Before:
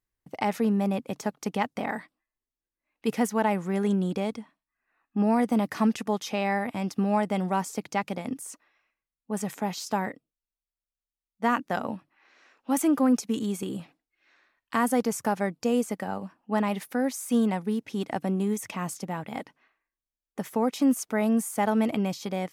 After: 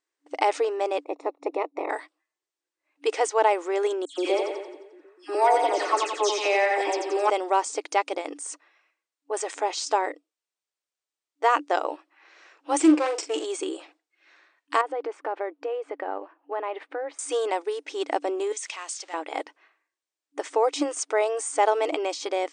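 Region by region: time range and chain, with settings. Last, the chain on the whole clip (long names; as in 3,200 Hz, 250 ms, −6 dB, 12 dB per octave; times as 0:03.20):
0:01.03–0:01.89: ceiling on every frequency bin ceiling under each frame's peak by 17 dB + moving average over 28 samples
0:04.05–0:07.30: comb filter 5.5 ms, depth 59% + all-pass dispersion lows, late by 129 ms, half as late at 2,600 Hz + echo with a time of its own for lows and highs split 300 Hz, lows 249 ms, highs 88 ms, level −5 dB
0:12.80–0:13.45: lower of the sound and its delayed copy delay 0.38 ms + double-tracking delay 43 ms −9.5 dB
0:14.81–0:17.19: high-frequency loss of the air 480 metres + downward compressor 5 to 1, threshold −28 dBFS
0:18.52–0:19.14: converter with a step at zero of −45.5 dBFS + resonant band-pass 4,900 Hz, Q 0.63
whole clip: brick-wall band-pass 290–9,200 Hz; dynamic equaliser 1,700 Hz, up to −5 dB, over −46 dBFS, Q 2.8; level +6 dB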